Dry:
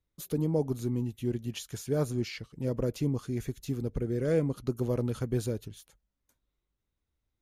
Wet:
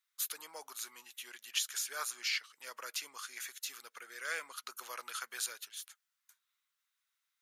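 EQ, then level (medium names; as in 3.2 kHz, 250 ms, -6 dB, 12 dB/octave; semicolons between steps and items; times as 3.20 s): Chebyshev high-pass 1.3 kHz, order 3; +8.0 dB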